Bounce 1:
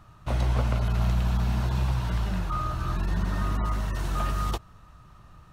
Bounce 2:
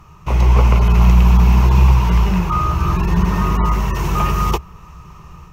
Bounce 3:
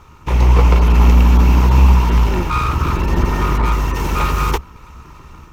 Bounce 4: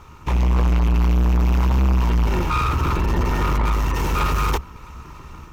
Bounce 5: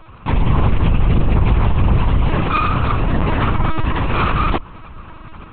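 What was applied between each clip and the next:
dynamic EQ 6500 Hz, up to -4 dB, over -59 dBFS, Q 0.88; AGC gain up to 4 dB; ripple EQ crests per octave 0.77, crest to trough 10 dB; gain +7.5 dB
minimum comb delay 2.2 ms; gain +1.5 dB
soft clip -14.5 dBFS, distortion -10 dB
LPC vocoder at 8 kHz pitch kept; gain +3.5 dB

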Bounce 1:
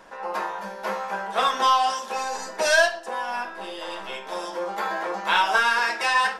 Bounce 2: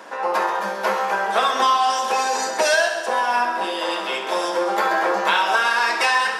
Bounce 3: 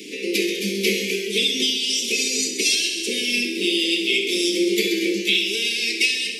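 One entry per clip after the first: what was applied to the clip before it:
HPF 220 Hz 24 dB/oct; compressor, threshold -25 dBFS, peak gain reduction 11 dB; on a send: multi-head echo 66 ms, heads first and second, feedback 64%, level -13.5 dB; on the sum: gain +9 dB
Chebyshev band-stop 430–2200 Hz, order 5; vocal rider within 4 dB 0.5 s; on a send at -13 dB: reverb RT60 1.0 s, pre-delay 63 ms; on the sum: gain +8.5 dB

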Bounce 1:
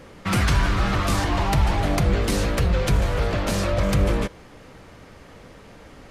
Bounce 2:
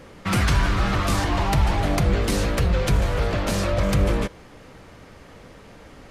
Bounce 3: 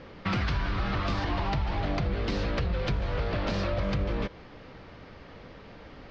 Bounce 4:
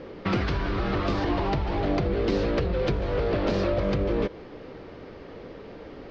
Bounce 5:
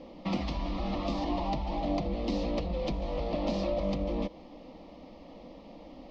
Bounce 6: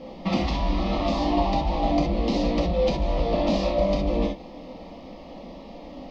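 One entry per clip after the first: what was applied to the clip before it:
nothing audible
compressor, threshold -23 dBFS, peak gain reduction 9 dB; steep low-pass 5100 Hz 36 dB/oct; gain -2 dB
bell 390 Hz +11 dB 1.3 oct
fixed phaser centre 410 Hz, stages 6; gain -2.5 dB
non-linear reverb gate 90 ms flat, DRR 0 dB; gain +5.5 dB

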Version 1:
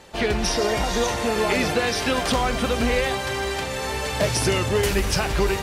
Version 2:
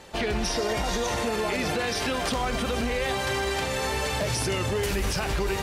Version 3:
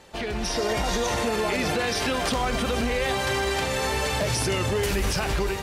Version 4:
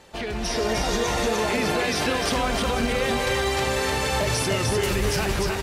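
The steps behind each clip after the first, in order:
limiter -18.5 dBFS, peak gain reduction 8.5 dB
AGC gain up to 5.5 dB; gain -3.5 dB
echo 0.302 s -3.5 dB

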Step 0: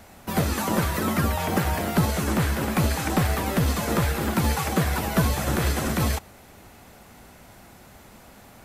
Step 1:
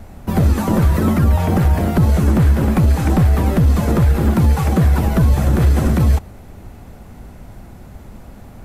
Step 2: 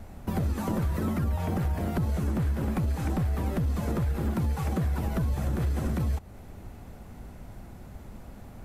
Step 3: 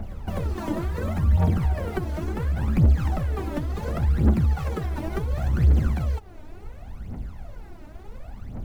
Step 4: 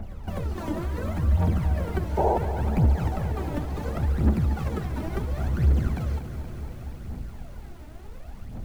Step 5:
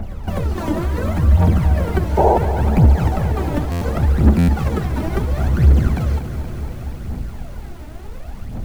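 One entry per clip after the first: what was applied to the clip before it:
tilt -3.5 dB/oct; limiter -9 dBFS, peak gain reduction 7.5 dB; high shelf 6600 Hz +9.5 dB; gain +3 dB
compressor 2.5:1, threshold -21 dBFS, peak gain reduction 8 dB; gain -7 dB
median filter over 5 samples; phaser 0.7 Hz, delay 3.4 ms, feedback 74%; pre-echo 0.252 s -17 dB
painted sound noise, 2.17–2.38, 340–970 Hz -20 dBFS; lo-fi delay 0.236 s, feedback 80%, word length 8-bit, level -11 dB; gain -2.5 dB
stuck buffer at 3.71/4.38, samples 512; gain +9 dB

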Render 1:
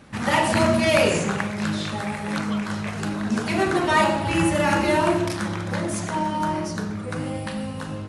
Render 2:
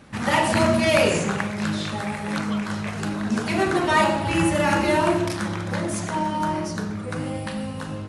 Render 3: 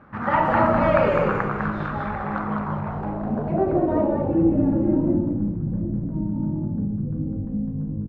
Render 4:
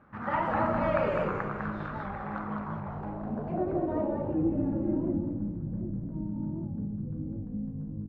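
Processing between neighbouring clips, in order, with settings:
nothing audible
low-pass sweep 1300 Hz -> 250 Hz, 2.19–5.29; frequency-shifting echo 0.203 s, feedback 36%, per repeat -58 Hz, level -3 dB; gain -3 dB
on a send at -18 dB: reverb RT60 3.8 s, pre-delay 8 ms; on the sum: record warp 78 rpm, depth 100 cents; gain -9 dB

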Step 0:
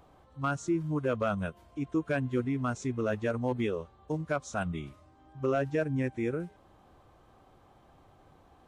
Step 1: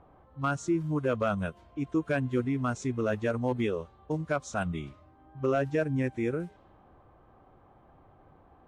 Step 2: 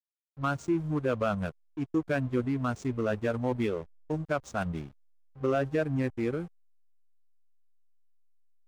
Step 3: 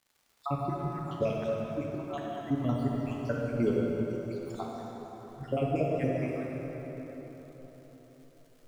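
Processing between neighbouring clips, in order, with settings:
low-pass opened by the level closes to 1600 Hz, open at -30.5 dBFS; gain +1.5 dB
backlash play -37.5 dBFS
random spectral dropouts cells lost 81%; crackle 160/s -53 dBFS; plate-style reverb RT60 4.6 s, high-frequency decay 0.6×, DRR -3.5 dB

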